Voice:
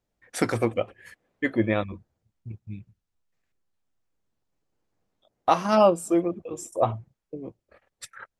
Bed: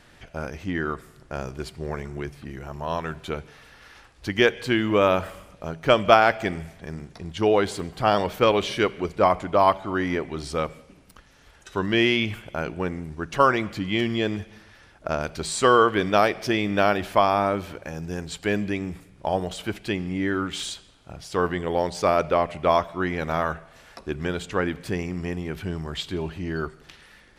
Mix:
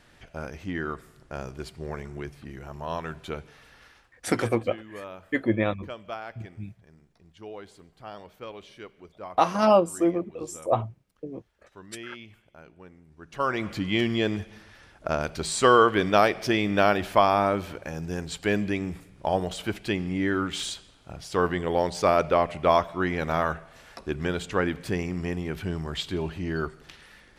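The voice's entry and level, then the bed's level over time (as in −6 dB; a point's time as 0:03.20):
3.90 s, −0.5 dB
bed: 0:03.83 −4 dB
0:04.35 −21 dB
0:13.05 −21 dB
0:13.70 −0.5 dB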